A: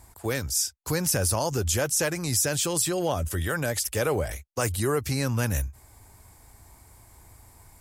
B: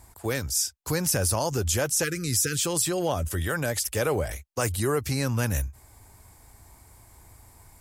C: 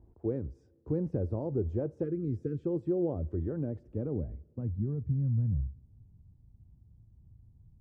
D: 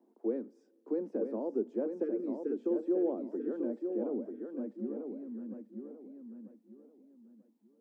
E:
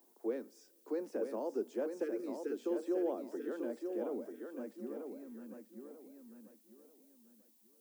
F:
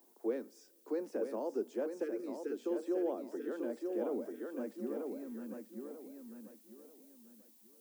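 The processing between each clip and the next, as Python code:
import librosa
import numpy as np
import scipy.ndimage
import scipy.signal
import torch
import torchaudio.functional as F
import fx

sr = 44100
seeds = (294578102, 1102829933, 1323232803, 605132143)

y1 = fx.spec_erase(x, sr, start_s=2.04, length_s=0.6, low_hz=520.0, high_hz=1200.0)
y2 = fx.filter_sweep_lowpass(y1, sr, from_hz=370.0, to_hz=160.0, start_s=3.35, end_s=5.26, q=2.0)
y2 = fx.rev_double_slope(y2, sr, seeds[0], early_s=0.32, late_s=2.5, knee_db=-18, drr_db=17.5)
y2 = F.gain(torch.from_numpy(y2), -5.5).numpy()
y3 = scipy.signal.sosfilt(scipy.signal.butter(16, 210.0, 'highpass', fs=sr, output='sos'), y2)
y3 = fx.echo_feedback(y3, sr, ms=940, feedback_pct=29, wet_db=-6.0)
y4 = fx.tilt_eq(y3, sr, slope=5.5)
y4 = F.gain(torch.from_numpy(y4), 3.5).numpy()
y5 = fx.rider(y4, sr, range_db=4, speed_s=2.0)
y5 = F.gain(torch.from_numpy(y5), 1.0).numpy()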